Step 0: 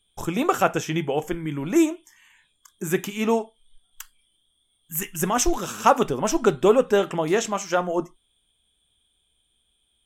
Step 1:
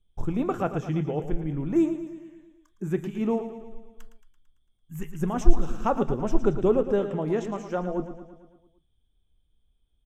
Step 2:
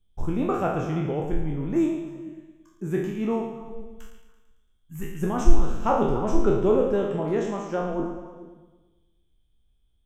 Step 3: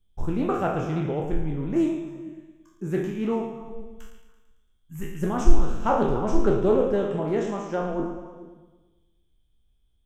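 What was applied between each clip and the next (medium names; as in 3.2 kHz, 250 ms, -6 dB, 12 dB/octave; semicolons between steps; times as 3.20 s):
tilt EQ -4 dB/octave; on a send: feedback delay 112 ms, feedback 58%, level -11 dB; on the sum: trim -10 dB
spectral sustain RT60 0.77 s; repeats whose band climbs or falls 142 ms, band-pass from 2.8 kHz, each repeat -1.4 oct, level -8.5 dB; trim -1 dB
loudspeaker Doppler distortion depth 0.29 ms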